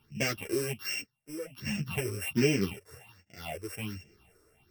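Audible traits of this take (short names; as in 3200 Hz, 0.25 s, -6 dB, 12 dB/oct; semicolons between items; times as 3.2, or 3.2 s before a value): a buzz of ramps at a fixed pitch in blocks of 16 samples; phasing stages 6, 1.3 Hz, lowest notch 200–1100 Hz; tremolo triangle 0.53 Hz, depth 90%; a shimmering, thickened sound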